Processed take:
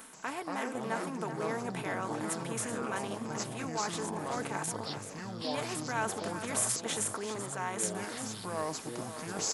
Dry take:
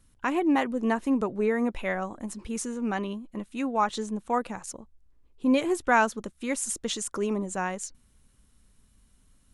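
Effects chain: spectral levelling over time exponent 0.6; peaking EQ 5.8 kHz -9.5 dB 2.3 oct; reverse; compression 4:1, threshold -32 dBFS, peak gain reduction 13.5 dB; reverse; high-pass 750 Hz 6 dB/octave; treble shelf 4.1 kHz +10 dB; comb 4.5 ms, depth 42%; on a send: delay 383 ms -11 dB; on the sum: ever faster or slower copies 131 ms, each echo -6 st, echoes 2

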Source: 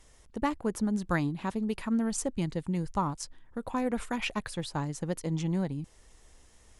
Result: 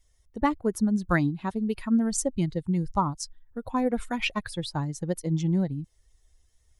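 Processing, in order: expander on every frequency bin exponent 1.5; trim +6.5 dB

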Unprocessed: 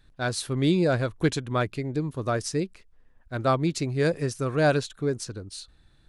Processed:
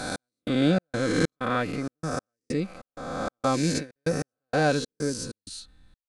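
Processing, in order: reverse spectral sustain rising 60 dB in 1.80 s; 3.39–4.10 s: gate with hold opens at -12 dBFS; peaking EQ 160 Hz +6.5 dB 0.82 oct; comb 3.9 ms, depth 53%; trance gate "x..xx.xx.xxx." 96 bpm -60 dB; trim -4.5 dB

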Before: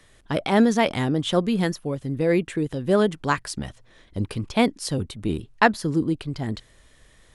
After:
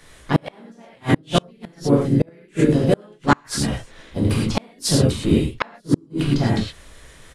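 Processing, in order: gated-style reverb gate 140 ms flat, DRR -5 dB; harmony voices -5 st -16 dB, -3 st -7 dB, +4 st -12 dB; inverted gate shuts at -7 dBFS, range -36 dB; trim +3.5 dB

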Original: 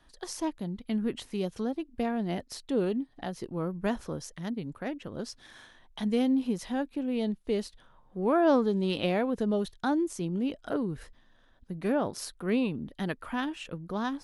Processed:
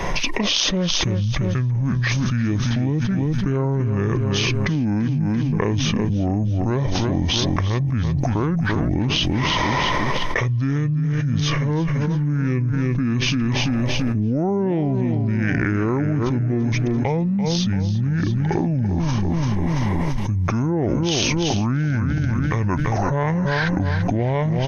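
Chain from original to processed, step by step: feedback delay 195 ms, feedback 43%, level -10.5 dB; speed mistake 78 rpm record played at 45 rpm; level flattener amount 100%

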